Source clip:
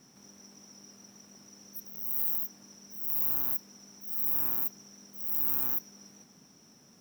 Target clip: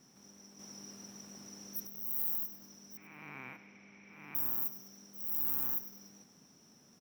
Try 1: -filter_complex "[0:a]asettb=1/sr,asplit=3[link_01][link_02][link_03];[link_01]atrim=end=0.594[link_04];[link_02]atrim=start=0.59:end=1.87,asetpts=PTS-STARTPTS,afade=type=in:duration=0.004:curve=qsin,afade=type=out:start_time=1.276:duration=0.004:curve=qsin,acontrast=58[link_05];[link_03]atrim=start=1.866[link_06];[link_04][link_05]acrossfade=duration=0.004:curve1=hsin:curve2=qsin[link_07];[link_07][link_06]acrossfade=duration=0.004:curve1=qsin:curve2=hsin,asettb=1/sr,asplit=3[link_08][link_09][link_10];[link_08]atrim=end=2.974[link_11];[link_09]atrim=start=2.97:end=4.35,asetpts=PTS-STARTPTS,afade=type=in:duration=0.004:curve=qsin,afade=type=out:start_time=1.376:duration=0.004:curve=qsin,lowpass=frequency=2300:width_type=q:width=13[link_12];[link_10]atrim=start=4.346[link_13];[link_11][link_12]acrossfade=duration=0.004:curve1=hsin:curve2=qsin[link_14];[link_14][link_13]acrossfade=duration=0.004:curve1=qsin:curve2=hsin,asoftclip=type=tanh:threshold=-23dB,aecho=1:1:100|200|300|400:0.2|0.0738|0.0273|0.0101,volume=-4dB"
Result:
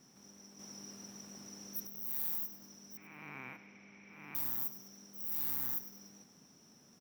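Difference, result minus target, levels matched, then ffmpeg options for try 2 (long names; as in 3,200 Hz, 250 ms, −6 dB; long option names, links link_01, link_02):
soft clipping: distortion +15 dB
-filter_complex "[0:a]asettb=1/sr,asplit=3[link_01][link_02][link_03];[link_01]atrim=end=0.594[link_04];[link_02]atrim=start=0.59:end=1.87,asetpts=PTS-STARTPTS,afade=type=in:duration=0.004:curve=qsin,afade=type=out:start_time=1.276:duration=0.004:curve=qsin,acontrast=58[link_05];[link_03]atrim=start=1.866[link_06];[link_04][link_05]acrossfade=duration=0.004:curve1=hsin:curve2=qsin[link_07];[link_07][link_06]acrossfade=duration=0.004:curve1=qsin:curve2=hsin,asettb=1/sr,asplit=3[link_08][link_09][link_10];[link_08]atrim=end=2.974[link_11];[link_09]atrim=start=2.97:end=4.35,asetpts=PTS-STARTPTS,afade=type=in:duration=0.004:curve=qsin,afade=type=out:start_time=1.376:duration=0.004:curve=qsin,lowpass=frequency=2300:width_type=q:width=13[link_12];[link_10]atrim=start=4.346[link_13];[link_11][link_12]acrossfade=duration=0.004:curve1=hsin:curve2=qsin[link_14];[link_14][link_13]acrossfade=duration=0.004:curve1=qsin:curve2=hsin,asoftclip=type=tanh:threshold=-12.5dB,aecho=1:1:100|200|300|400:0.2|0.0738|0.0273|0.0101,volume=-4dB"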